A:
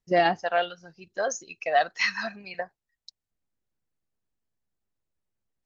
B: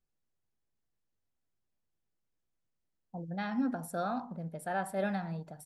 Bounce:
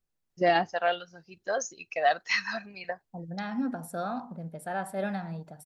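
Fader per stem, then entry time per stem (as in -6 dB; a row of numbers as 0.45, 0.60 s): -2.0, +1.0 dB; 0.30, 0.00 s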